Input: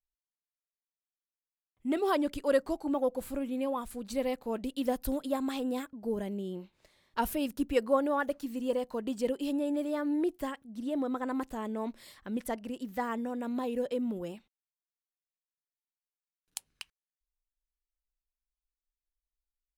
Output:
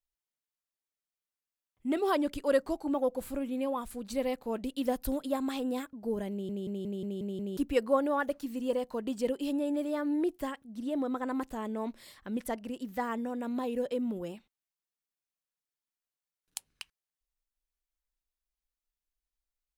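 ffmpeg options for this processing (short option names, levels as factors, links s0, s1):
-filter_complex "[0:a]asplit=8[s0][s1][s2][s3][s4][s5][s6][s7];[s0]atrim=end=6.492[s8];[s1]atrim=start=6.308:end=6.492[s9];[s2]atrim=start=6.308:end=6.492[s10];[s3]atrim=start=6.308:end=6.492[s11];[s4]atrim=start=6.308:end=6.492[s12];[s5]atrim=start=6.308:end=6.492[s13];[s6]atrim=start=6.308:end=6.492[s14];[s7]atrim=start=7.568[s15];[s8][s9]acrossfade=d=0.004:c1=hsin:c2=hsin[s16];[s16][s10]acrossfade=d=0.004:c1=hsin:c2=hsin[s17];[s17][s11]acrossfade=d=0.004:c1=hsin:c2=hsin[s18];[s18][s12]acrossfade=d=0.004:c1=hsin:c2=hsin[s19];[s19][s13]acrossfade=d=0.004:c1=hsin:c2=hsin[s20];[s20][s14]acrossfade=d=0.004:c1=hsin:c2=hsin[s21];[s21][s15]acrossfade=d=0.004:c1=hsin:c2=hsin"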